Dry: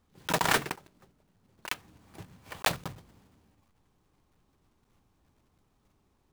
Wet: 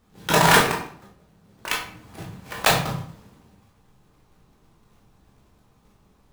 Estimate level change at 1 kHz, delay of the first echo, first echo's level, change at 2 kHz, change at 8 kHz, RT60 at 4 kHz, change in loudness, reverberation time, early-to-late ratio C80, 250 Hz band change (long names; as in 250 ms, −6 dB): +11.5 dB, no echo audible, no echo audible, +10.5 dB, +10.0 dB, 0.40 s, +10.5 dB, 0.55 s, 9.5 dB, +12.0 dB